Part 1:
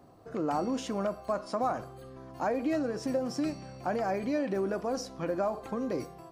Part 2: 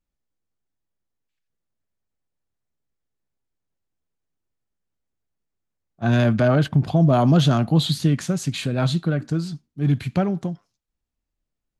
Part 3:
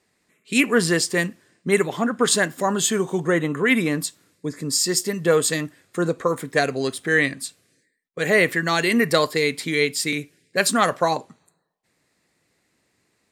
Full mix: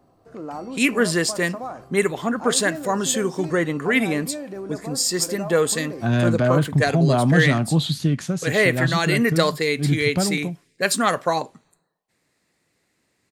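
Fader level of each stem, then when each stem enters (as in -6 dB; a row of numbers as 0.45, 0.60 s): -2.5, -1.5, -1.0 dB; 0.00, 0.00, 0.25 s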